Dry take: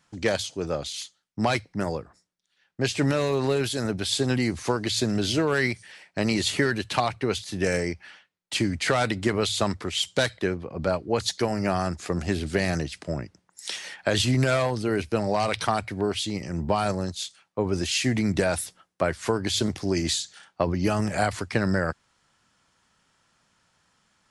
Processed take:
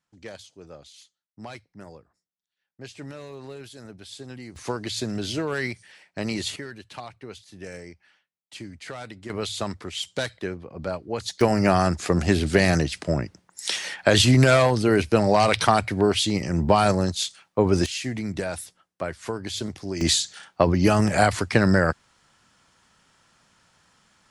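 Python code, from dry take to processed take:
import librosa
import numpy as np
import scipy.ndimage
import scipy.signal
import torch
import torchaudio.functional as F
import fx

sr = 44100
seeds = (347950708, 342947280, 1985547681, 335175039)

y = fx.gain(x, sr, db=fx.steps((0.0, -15.5), (4.56, -4.0), (6.56, -14.0), (9.3, -4.5), (11.41, 6.0), (17.86, -5.5), (20.01, 5.5)))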